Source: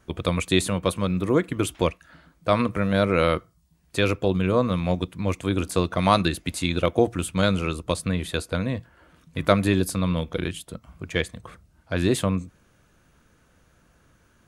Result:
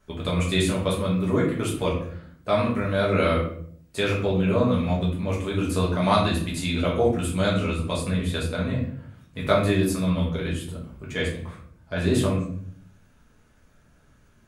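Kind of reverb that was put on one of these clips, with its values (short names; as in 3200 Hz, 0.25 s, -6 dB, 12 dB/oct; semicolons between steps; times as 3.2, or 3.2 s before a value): shoebox room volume 78 m³, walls mixed, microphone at 1.4 m; gain -7 dB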